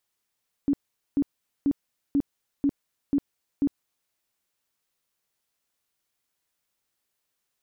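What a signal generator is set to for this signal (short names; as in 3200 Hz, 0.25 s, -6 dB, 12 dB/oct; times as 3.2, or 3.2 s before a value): tone bursts 282 Hz, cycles 15, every 0.49 s, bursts 7, -18.5 dBFS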